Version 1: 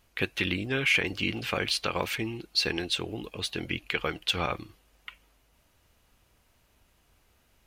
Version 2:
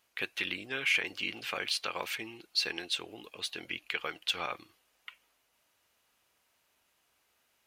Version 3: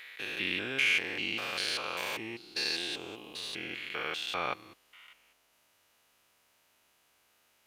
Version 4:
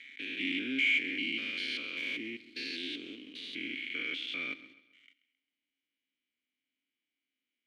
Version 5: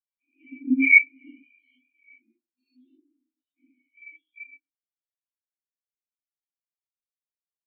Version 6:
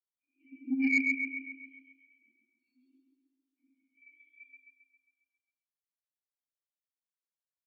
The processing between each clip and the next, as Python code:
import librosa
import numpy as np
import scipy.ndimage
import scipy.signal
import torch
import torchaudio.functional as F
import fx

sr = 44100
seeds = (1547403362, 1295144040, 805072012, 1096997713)

y1 = fx.highpass(x, sr, hz=770.0, slope=6)
y1 = F.gain(torch.from_numpy(y1), -3.5).numpy()
y2 = fx.spec_steps(y1, sr, hold_ms=200)
y2 = fx.peak_eq(y2, sr, hz=62.0, db=-7.5, octaves=0.36)
y2 = F.gain(torch.from_numpy(y2), 5.5).numpy()
y3 = fx.leveller(y2, sr, passes=3)
y3 = fx.vowel_filter(y3, sr, vowel='i')
y3 = fx.echo_feedback(y3, sr, ms=133, feedback_pct=43, wet_db=-17)
y4 = fx.room_shoebox(y3, sr, seeds[0], volume_m3=340.0, walls='furnished', distance_m=7.2)
y4 = fx.spectral_expand(y4, sr, expansion=4.0)
y4 = F.gain(torch.from_numpy(y4), 3.0).numpy()
y5 = fx.comb_fb(y4, sr, f0_hz=270.0, decay_s=0.32, harmonics='all', damping=0.0, mix_pct=70)
y5 = fx.echo_feedback(y5, sr, ms=135, feedback_pct=55, wet_db=-3)
y5 = 10.0 ** (-12.5 / 20.0) * np.tanh(y5 / 10.0 ** (-12.5 / 20.0))
y5 = F.gain(torch.from_numpy(y5), -3.5).numpy()